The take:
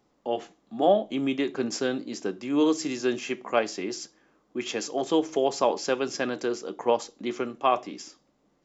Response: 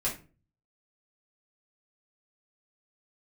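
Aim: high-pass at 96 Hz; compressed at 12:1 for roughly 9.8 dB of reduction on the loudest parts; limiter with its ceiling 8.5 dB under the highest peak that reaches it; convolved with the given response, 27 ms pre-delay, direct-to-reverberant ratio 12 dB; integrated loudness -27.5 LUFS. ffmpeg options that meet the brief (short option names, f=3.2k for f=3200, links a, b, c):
-filter_complex "[0:a]highpass=96,acompressor=threshold=-26dB:ratio=12,alimiter=limit=-23.5dB:level=0:latency=1,asplit=2[a][b];[1:a]atrim=start_sample=2205,adelay=27[c];[b][c]afir=irnorm=-1:irlink=0,volume=-18dB[d];[a][d]amix=inputs=2:normalize=0,volume=7dB"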